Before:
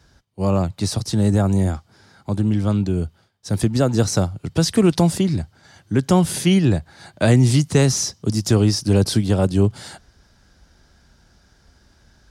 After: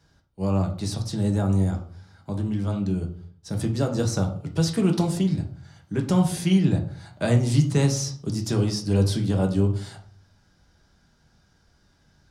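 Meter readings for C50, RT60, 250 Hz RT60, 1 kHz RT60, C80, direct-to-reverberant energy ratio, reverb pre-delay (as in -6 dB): 10.5 dB, 0.50 s, 0.55 s, 0.45 s, 14.5 dB, 2.5 dB, 5 ms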